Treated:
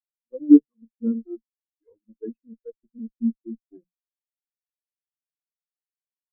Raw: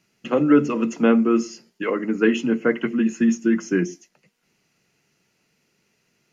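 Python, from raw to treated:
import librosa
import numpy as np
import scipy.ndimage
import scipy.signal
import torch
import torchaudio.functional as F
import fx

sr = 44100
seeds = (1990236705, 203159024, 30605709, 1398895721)

y = fx.dereverb_blind(x, sr, rt60_s=1.1)
y = fx.cheby_harmonics(y, sr, harmonics=(6, 8), levels_db=(-13, -9), full_scale_db=-5.0)
y = fx.hum_notches(y, sr, base_hz=60, count=3)
y = fx.spectral_expand(y, sr, expansion=4.0)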